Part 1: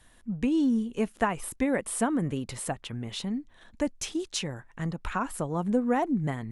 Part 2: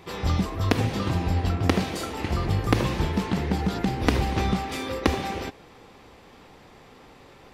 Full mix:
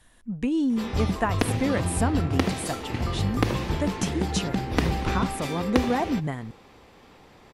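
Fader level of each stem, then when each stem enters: +0.5, -2.0 dB; 0.00, 0.70 s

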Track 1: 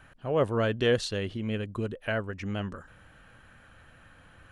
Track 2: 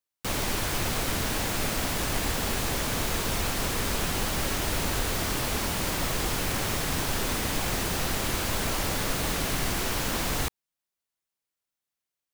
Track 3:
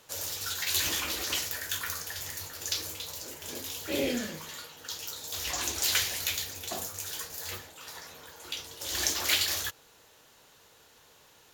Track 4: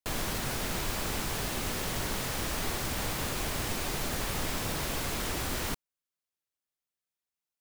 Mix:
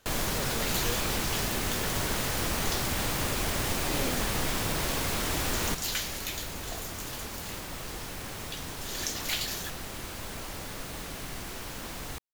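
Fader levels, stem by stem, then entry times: -14.5, -10.5, -5.5, +2.5 dB; 0.00, 1.70, 0.00, 0.00 s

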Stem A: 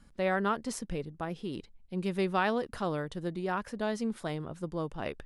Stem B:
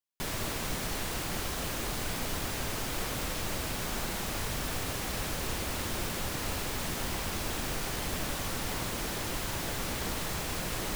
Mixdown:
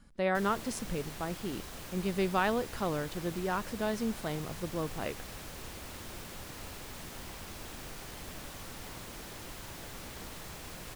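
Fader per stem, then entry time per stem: -0.5, -10.5 dB; 0.00, 0.15 s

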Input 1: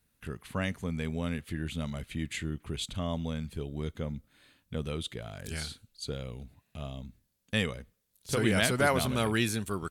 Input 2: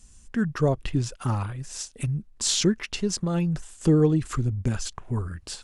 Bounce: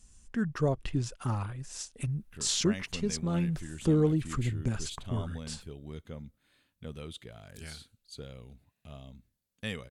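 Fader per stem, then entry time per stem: -7.5, -5.5 dB; 2.10, 0.00 s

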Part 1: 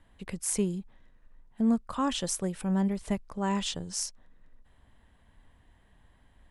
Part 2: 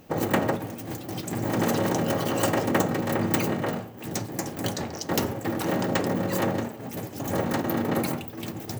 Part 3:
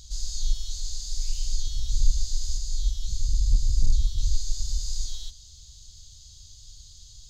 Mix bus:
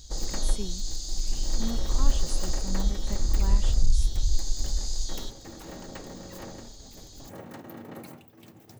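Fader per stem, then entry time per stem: -9.5, -16.5, -0.5 dB; 0.00, 0.00, 0.00 s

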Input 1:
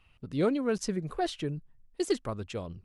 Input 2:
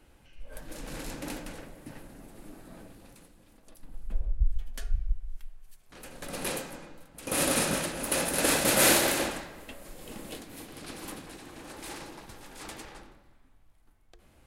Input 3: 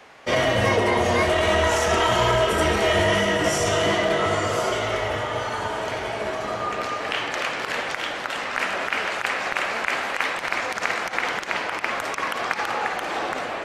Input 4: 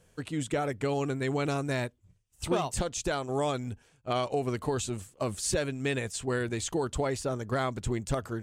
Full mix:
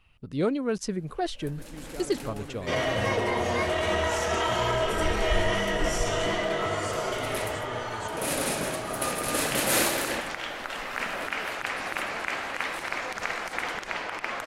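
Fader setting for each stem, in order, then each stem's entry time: +1.0, -3.0, -6.5, -12.0 dB; 0.00, 0.90, 2.40, 1.40 s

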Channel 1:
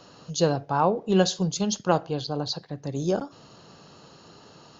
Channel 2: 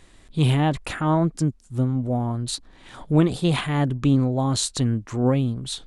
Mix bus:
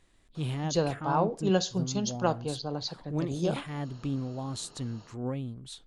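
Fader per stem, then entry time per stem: -5.0, -13.5 dB; 0.35, 0.00 s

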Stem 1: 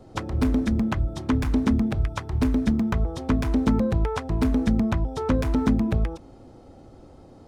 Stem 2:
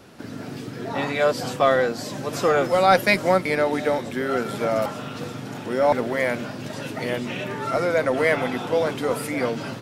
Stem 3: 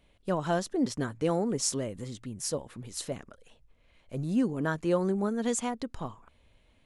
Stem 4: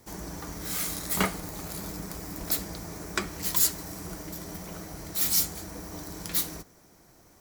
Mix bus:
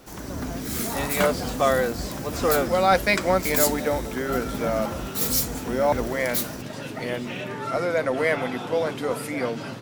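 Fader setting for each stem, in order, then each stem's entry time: -12.5, -2.5, -12.0, +0.5 dB; 0.00, 0.00, 0.00, 0.00 s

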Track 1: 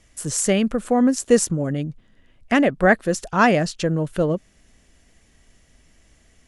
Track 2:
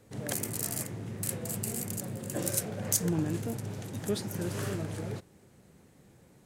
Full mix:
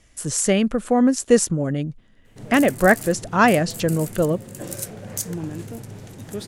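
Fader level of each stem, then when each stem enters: +0.5, 0.0 dB; 0.00, 2.25 s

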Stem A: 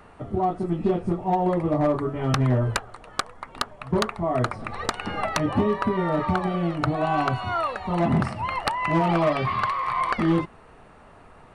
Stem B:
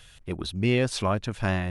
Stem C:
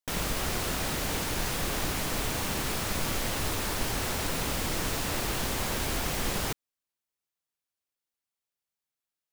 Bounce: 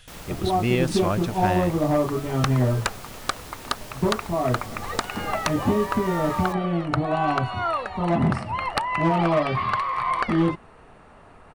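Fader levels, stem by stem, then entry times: +0.5, 0.0, -10.0 dB; 0.10, 0.00, 0.00 s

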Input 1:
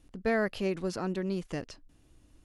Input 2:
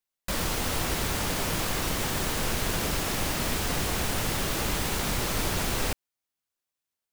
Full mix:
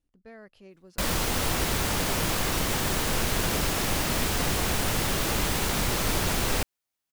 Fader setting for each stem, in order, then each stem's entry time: -19.5, +2.0 dB; 0.00, 0.70 s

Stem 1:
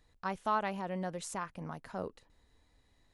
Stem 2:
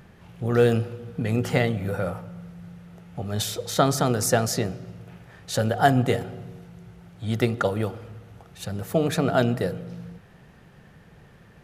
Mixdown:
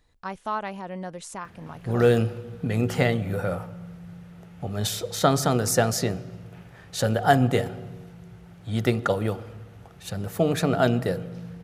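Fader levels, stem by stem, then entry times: +2.5, 0.0 dB; 0.00, 1.45 s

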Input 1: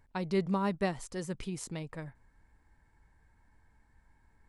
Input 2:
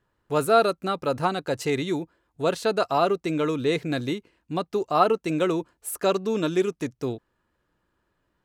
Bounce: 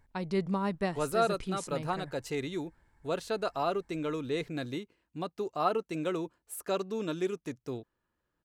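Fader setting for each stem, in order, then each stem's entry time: -0.5, -9.0 dB; 0.00, 0.65 s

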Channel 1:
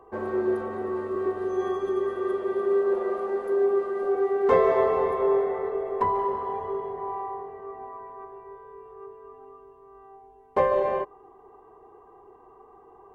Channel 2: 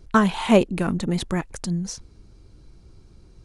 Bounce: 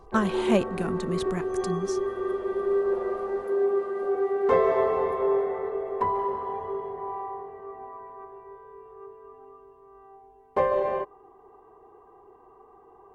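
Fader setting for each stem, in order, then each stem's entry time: -1.5, -7.0 dB; 0.00, 0.00 s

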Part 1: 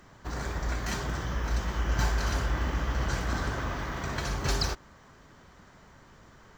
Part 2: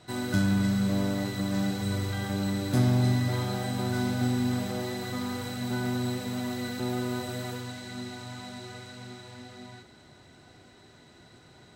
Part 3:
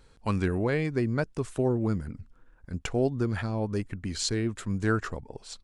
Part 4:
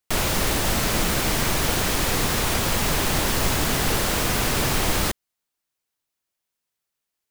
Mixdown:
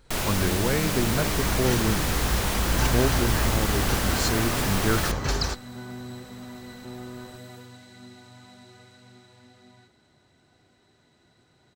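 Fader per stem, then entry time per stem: +2.0, -8.5, +0.5, -5.0 dB; 0.80, 0.05, 0.00, 0.00 s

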